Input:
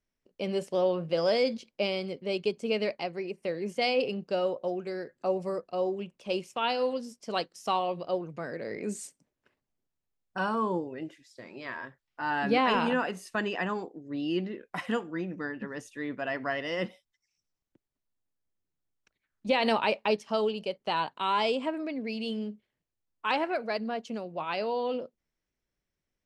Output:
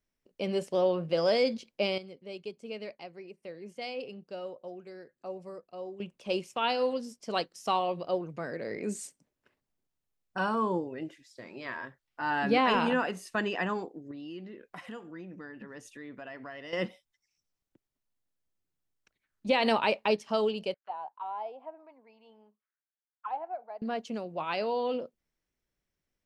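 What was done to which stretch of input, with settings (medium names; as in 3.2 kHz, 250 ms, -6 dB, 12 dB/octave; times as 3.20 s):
1.98–6.00 s: gain -11 dB
14.11–16.73 s: compression 2.5:1, threshold -45 dBFS
20.74–23.82 s: auto-wah 760–1600 Hz, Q 7.7, down, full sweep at -27.5 dBFS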